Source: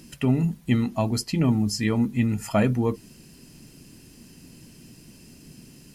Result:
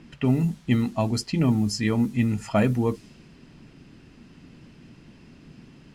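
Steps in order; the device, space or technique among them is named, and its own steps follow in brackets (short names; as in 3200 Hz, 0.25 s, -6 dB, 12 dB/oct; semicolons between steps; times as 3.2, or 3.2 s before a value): cassette deck with a dynamic noise filter (white noise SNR 29 dB; low-pass opened by the level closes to 2600 Hz, open at -17.5 dBFS)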